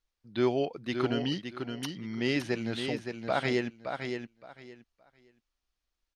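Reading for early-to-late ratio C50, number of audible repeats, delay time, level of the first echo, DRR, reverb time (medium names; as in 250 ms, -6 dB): no reverb, 3, 568 ms, -6.5 dB, no reverb, no reverb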